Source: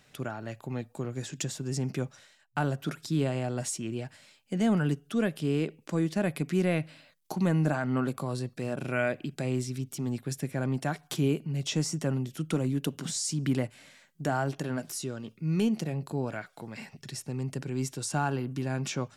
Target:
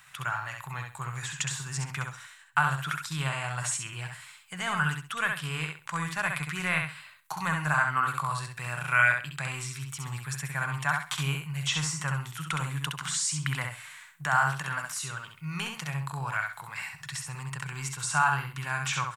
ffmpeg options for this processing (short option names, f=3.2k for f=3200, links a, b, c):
-filter_complex "[0:a]acrossover=split=7300[a][b];[b]acompressor=threshold=-58dB:ratio=4:attack=1:release=60[c];[a][c]amix=inputs=2:normalize=0,firequalizer=gain_entry='entry(150,0);entry(220,-22);entry(570,-10);entry(1000,14);entry(5100,2);entry(8100,13)':delay=0.05:min_phase=1,aecho=1:1:66|132|198:0.596|0.137|0.0315,volume=-2dB"